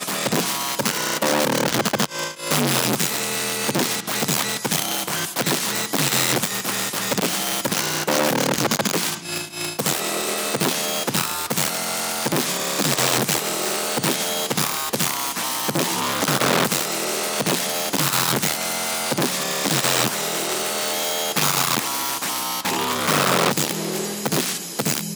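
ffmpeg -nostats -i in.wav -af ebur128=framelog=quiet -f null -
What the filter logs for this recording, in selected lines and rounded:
Integrated loudness:
  I:         -20.9 LUFS
  Threshold: -30.9 LUFS
Loudness range:
  LRA:         1.2 LU
  Threshold: -40.8 LUFS
  LRA low:   -21.4 LUFS
  LRA high:  -20.2 LUFS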